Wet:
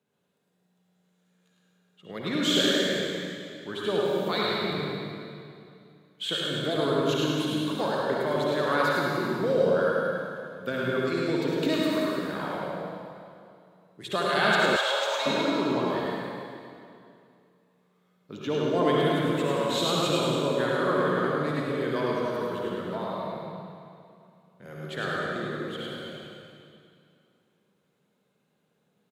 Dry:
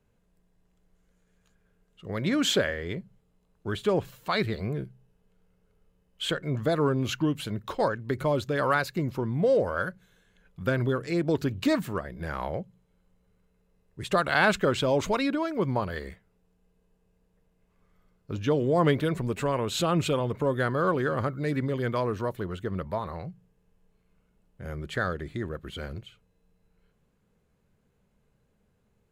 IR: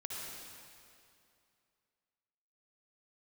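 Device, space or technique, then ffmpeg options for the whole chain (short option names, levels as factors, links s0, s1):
PA in a hall: -filter_complex "[0:a]highpass=f=160:w=0.5412,highpass=f=160:w=1.3066,equalizer=f=3700:t=o:w=0.37:g=7,aecho=1:1:105:0.596[s0];[1:a]atrim=start_sample=2205[s1];[s0][s1]afir=irnorm=-1:irlink=0,asettb=1/sr,asplit=3[s2][s3][s4];[s2]atrim=end=14.764[s5];[s3]atrim=start=14.76:end=15.26,asetpts=PTS-STARTPTS,afade=t=in:d=0.004:c=qsin,afade=t=out:st=0.496:d=0.004:c=qsin,highpass=f=640:w=0.5412,highpass=f=640:w=1.3066[s6];[s4]atrim=start=15.256[s7];[s5][s6]acrossfade=d=0.004:c1=hsin:c2=qsin[s8];[s8][s7]acrossfade=d=0.004:c1=qsin:c2=hsin"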